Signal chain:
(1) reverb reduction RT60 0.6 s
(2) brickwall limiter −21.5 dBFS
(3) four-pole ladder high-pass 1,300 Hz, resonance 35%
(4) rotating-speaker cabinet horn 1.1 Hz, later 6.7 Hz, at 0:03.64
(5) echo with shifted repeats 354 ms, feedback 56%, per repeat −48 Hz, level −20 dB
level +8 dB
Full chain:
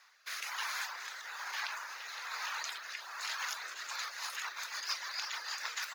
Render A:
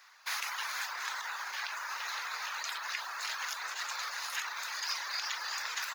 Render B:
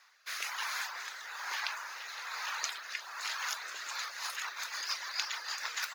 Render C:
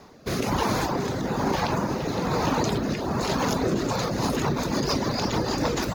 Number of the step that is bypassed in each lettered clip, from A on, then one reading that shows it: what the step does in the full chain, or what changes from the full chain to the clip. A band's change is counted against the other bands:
4, change in integrated loudness +2.5 LU
2, change in crest factor +6.0 dB
3, 500 Hz band +26.5 dB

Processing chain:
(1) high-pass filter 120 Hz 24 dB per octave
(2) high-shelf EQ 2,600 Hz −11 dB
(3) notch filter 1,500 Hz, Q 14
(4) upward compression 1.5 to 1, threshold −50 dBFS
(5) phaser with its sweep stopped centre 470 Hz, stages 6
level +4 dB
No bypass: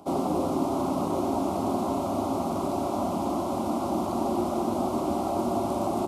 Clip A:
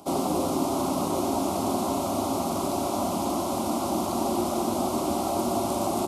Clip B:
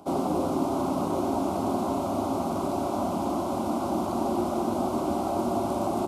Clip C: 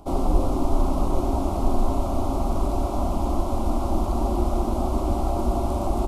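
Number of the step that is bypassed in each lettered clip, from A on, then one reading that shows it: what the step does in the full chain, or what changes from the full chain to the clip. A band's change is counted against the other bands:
2, 8 kHz band +9.0 dB
3, 2 kHz band +2.0 dB
1, 125 Hz band +10.0 dB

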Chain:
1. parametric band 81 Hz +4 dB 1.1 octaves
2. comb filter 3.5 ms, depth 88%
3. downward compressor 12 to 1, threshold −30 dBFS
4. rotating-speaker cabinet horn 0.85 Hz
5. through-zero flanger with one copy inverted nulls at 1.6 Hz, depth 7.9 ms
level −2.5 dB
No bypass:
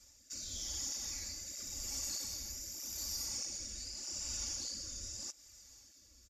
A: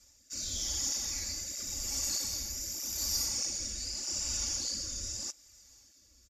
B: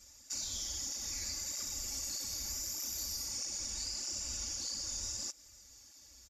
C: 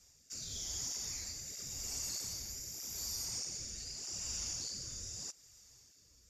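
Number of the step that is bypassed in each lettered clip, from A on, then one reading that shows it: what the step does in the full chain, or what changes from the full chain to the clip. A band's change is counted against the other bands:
3, average gain reduction 5.5 dB
4, change in momentary loudness spread −3 LU
2, 125 Hz band +2.5 dB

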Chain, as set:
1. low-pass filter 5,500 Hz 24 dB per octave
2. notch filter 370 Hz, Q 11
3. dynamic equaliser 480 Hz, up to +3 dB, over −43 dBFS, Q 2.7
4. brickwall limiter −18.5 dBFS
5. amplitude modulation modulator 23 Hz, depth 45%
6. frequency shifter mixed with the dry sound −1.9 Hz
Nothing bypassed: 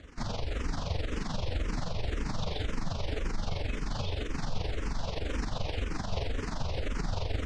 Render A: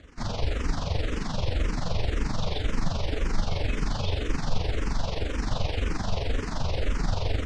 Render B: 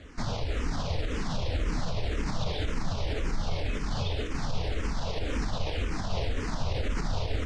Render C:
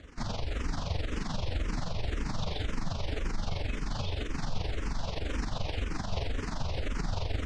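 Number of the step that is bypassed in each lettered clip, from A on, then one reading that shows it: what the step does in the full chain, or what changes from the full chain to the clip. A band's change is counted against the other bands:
4, average gain reduction 5.0 dB
5, change in integrated loudness +2.5 LU
3, 500 Hz band −2.0 dB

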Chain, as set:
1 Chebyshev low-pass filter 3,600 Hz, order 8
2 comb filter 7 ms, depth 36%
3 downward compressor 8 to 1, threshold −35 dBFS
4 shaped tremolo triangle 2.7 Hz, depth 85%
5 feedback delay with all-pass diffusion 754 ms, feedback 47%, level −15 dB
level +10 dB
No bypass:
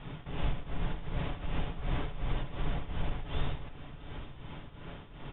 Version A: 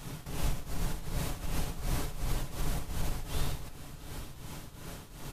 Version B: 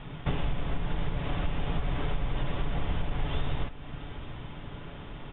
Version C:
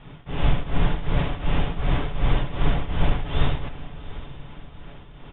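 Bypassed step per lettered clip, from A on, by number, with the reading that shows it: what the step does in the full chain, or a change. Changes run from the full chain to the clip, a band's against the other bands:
1, change in momentary loudness spread −1 LU
4, change in integrated loudness +4.5 LU
3, change in integrated loudness +12.5 LU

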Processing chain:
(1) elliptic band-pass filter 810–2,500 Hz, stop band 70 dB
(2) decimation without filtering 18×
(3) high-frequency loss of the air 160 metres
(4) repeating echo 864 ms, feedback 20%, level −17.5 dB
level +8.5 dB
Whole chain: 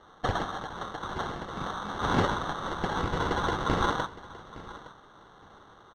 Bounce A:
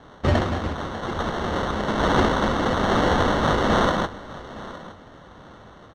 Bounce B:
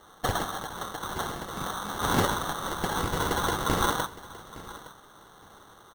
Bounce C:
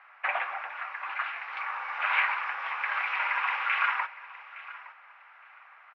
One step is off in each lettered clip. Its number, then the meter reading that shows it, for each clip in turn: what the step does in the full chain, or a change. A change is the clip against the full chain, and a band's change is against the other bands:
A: 1, change in integrated loudness +8.5 LU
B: 3, 8 kHz band +11.5 dB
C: 2, 500 Hz band −13.5 dB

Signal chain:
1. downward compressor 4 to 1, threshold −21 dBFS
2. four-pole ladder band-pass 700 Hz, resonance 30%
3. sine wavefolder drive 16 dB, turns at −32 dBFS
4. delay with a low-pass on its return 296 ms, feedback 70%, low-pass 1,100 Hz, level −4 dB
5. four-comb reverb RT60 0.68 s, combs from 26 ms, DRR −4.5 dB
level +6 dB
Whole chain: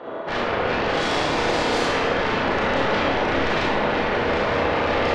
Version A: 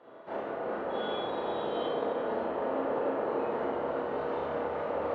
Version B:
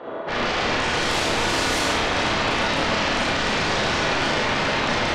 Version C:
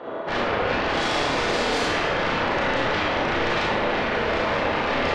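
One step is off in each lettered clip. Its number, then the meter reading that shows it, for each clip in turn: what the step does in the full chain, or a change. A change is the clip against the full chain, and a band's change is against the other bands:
3, 500 Hz band +10.5 dB
1, 8 kHz band +9.5 dB
4, 8 kHz band +2.0 dB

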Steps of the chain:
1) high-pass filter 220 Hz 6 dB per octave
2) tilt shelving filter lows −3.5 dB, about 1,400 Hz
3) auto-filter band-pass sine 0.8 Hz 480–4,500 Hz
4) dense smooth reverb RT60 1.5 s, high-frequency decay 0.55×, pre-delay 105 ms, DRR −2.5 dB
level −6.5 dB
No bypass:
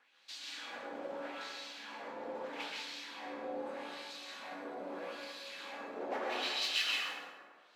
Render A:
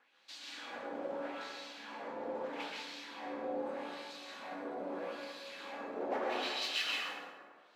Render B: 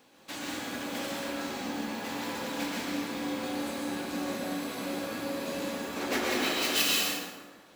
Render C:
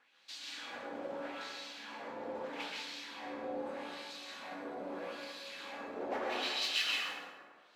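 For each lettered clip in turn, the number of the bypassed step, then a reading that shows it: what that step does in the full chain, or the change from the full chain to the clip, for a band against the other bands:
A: 2, 8 kHz band −4.5 dB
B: 3, 250 Hz band +9.5 dB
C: 1, 250 Hz band +2.0 dB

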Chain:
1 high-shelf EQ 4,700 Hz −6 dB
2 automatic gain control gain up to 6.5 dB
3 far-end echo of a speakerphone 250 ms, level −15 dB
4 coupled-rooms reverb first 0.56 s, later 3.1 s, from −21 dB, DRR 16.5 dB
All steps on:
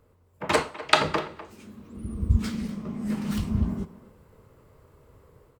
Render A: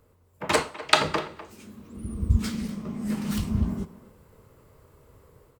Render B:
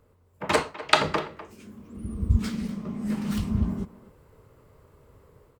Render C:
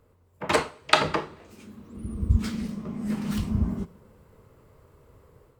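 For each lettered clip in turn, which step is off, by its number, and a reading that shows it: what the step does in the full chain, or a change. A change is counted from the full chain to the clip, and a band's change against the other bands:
1, 8 kHz band +4.0 dB
4, echo-to-direct ratio −13.0 dB to −15.5 dB
3, echo-to-direct ratio −13.0 dB to −16.5 dB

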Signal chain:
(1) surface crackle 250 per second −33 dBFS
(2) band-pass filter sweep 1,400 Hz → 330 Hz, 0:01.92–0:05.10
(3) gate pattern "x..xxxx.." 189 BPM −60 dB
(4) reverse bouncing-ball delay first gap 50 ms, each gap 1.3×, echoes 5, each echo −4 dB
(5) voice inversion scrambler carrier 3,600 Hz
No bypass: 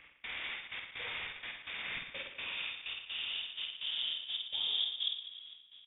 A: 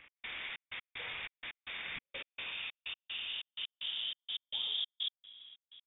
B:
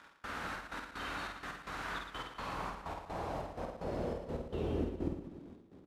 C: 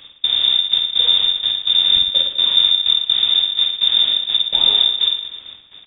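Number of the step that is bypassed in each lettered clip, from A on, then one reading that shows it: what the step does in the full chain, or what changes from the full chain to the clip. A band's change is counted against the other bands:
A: 4, change in integrated loudness −2.0 LU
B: 5, 4 kHz band −34.0 dB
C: 2, change in integrated loudness +23.5 LU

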